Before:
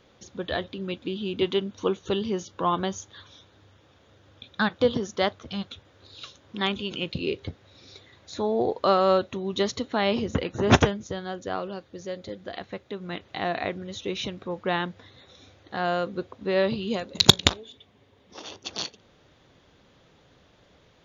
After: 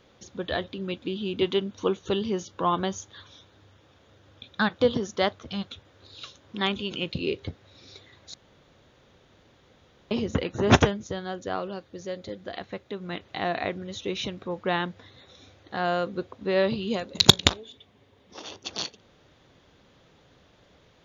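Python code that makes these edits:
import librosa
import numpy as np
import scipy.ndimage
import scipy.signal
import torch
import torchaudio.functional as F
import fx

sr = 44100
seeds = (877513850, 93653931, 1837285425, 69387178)

y = fx.edit(x, sr, fx.room_tone_fill(start_s=8.34, length_s=1.77), tone=tone)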